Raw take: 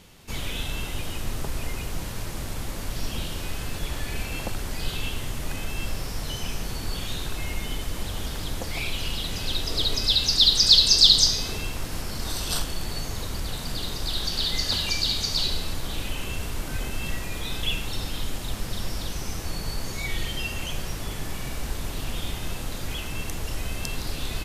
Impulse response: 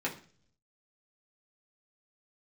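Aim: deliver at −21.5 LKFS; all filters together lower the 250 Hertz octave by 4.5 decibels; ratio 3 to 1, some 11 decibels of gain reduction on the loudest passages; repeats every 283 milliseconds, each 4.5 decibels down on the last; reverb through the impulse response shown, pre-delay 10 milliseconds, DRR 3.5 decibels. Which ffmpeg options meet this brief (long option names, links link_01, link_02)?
-filter_complex "[0:a]equalizer=frequency=250:width_type=o:gain=-6.5,acompressor=threshold=-26dB:ratio=3,aecho=1:1:283|566|849|1132|1415|1698|1981|2264|2547:0.596|0.357|0.214|0.129|0.0772|0.0463|0.0278|0.0167|0.01,asplit=2[link_01][link_02];[1:a]atrim=start_sample=2205,adelay=10[link_03];[link_02][link_03]afir=irnorm=-1:irlink=0,volume=-9.5dB[link_04];[link_01][link_04]amix=inputs=2:normalize=0,volume=7.5dB"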